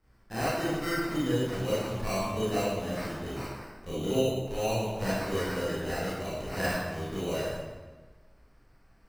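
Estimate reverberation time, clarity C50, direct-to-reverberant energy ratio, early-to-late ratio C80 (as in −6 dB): 1.3 s, −3.0 dB, −10.5 dB, 0.5 dB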